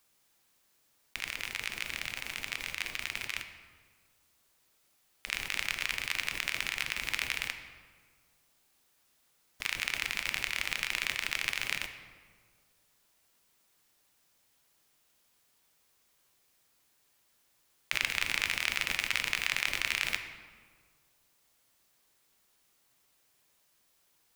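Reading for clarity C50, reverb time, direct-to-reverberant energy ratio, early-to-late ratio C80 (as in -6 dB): 8.5 dB, 1.7 s, 6.5 dB, 10.0 dB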